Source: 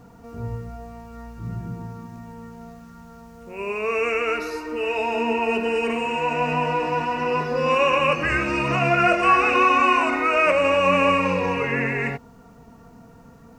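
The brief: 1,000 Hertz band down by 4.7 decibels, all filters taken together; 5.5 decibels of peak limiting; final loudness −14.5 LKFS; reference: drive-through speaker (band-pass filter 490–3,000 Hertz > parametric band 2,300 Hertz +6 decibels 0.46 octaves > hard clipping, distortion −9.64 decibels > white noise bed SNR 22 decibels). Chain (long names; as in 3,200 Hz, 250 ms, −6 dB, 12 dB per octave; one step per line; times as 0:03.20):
parametric band 1,000 Hz −5.5 dB
brickwall limiter −14 dBFS
band-pass filter 490–3,000 Hz
parametric band 2,300 Hz +6 dB 0.46 octaves
hard clipping −24 dBFS
white noise bed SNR 22 dB
level +11.5 dB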